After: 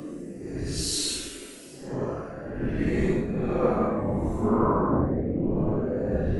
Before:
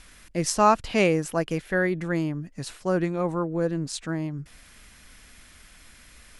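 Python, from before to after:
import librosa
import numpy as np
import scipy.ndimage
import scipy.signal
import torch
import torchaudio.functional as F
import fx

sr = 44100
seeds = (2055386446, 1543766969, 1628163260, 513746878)

p1 = fx.whisperise(x, sr, seeds[0])
p2 = fx.over_compress(p1, sr, threshold_db=-26.0, ratio=-0.5)
p3 = fx.low_shelf(p2, sr, hz=78.0, db=6.5)
p4 = p3 + fx.echo_stepped(p3, sr, ms=224, hz=210.0, octaves=0.7, feedback_pct=70, wet_db=-5.0, dry=0)
p5 = fx.paulstretch(p4, sr, seeds[1], factor=5.2, window_s=0.1, from_s=2.48)
y = fx.band_widen(p5, sr, depth_pct=70)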